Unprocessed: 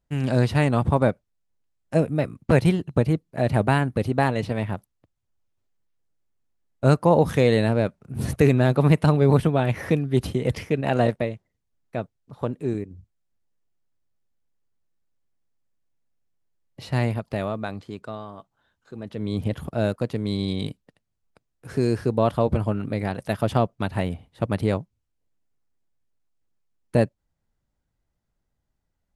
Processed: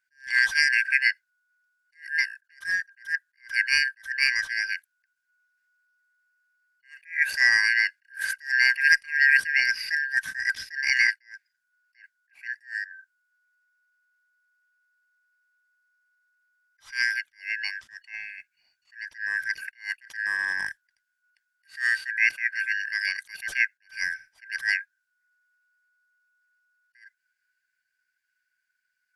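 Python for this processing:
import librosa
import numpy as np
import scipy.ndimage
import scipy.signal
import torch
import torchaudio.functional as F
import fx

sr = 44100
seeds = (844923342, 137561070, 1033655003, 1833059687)

y = fx.band_shuffle(x, sr, order='3142')
y = fx.tone_stack(y, sr, knobs='5-5-5')
y = fx.attack_slew(y, sr, db_per_s=210.0)
y = y * librosa.db_to_amplitude(9.0)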